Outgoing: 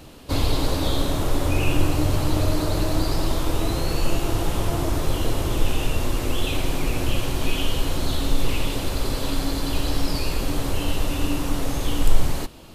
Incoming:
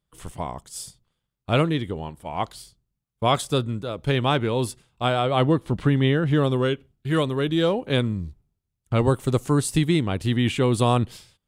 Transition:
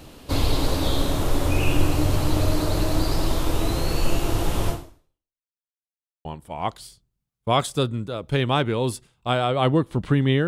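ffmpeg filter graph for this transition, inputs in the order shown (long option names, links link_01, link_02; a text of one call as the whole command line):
ffmpeg -i cue0.wav -i cue1.wav -filter_complex "[0:a]apad=whole_dur=10.47,atrim=end=10.47,asplit=2[link_01][link_02];[link_01]atrim=end=5.45,asetpts=PTS-STARTPTS,afade=type=out:start_time=4.7:duration=0.75:curve=exp[link_03];[link_02]atrim=start=5.45:end=6.25,asetpts=PTS-STARTPTS,volume=0[link_04];[1:a]atrim=start=2:end=6.22,asetpts=PTS-STARTPTS,afade=type=in:duration=0.004:curve=hsin[link_05];[link_03][link_04][link_05]concat=n=3:v=0:a=1" out.wav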